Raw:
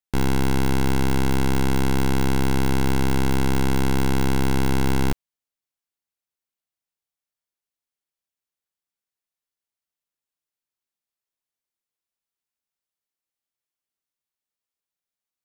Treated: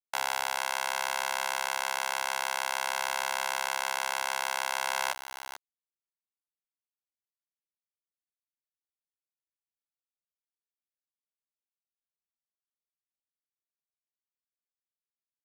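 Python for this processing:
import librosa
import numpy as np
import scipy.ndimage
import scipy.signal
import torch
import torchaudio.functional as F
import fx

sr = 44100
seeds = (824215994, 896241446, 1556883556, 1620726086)

p1 = fx.brickwall_bandpass(x, sr, low_hz=530.0, high_hz=13000.0)
p2 = p1 + fx.echo_single(p1, sr, ms=438, db=-13.5, dry=0)
p3 = fx.quant_dither(p2, sr, seeds[0], bits=8, dither='none')
y = fx.rider(p3, sr, range_db=10, speed_s=0.5)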